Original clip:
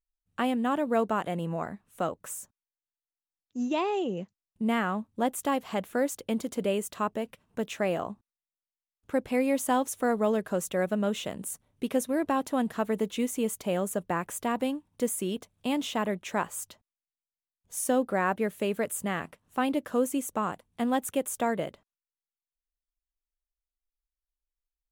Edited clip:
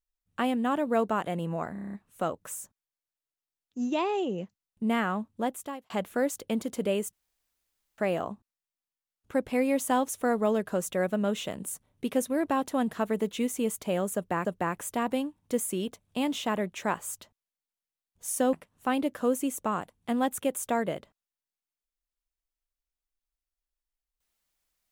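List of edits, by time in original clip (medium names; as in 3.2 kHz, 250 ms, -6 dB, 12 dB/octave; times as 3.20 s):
1.72 s: stutter 0.03 s, 8 plays
5.10–5.69 s: fade out
6.92–7.77 s: room tone
13.94–14.24 s: loop, 2 plays
18.02–19.24 s: delete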